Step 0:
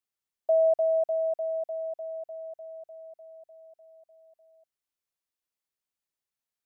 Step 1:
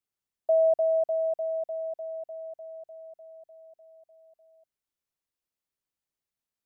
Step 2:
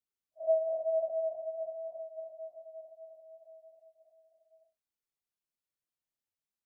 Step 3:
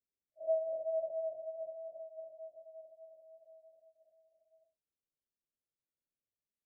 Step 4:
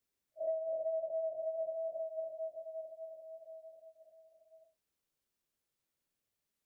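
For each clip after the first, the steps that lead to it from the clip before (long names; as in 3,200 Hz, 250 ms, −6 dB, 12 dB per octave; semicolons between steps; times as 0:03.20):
low-shelf EQ 470 Hz +6.5 dB; level −2 dB
random phases in long frames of 200 ms; level −6 dB
Butterworth low-pass 620 Hz 48 dB per octave
downward compressor 8 to 1, threshold −42 dBFS, peak gain reduction 14 dB; level +8 dB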